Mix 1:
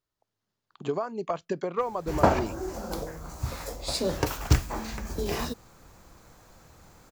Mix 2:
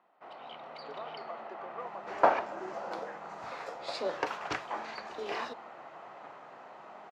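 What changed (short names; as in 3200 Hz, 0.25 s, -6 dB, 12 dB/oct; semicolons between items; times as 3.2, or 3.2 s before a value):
speech -12.0 dB; first sound: unmuted; master: add BPF 590–2600 Hz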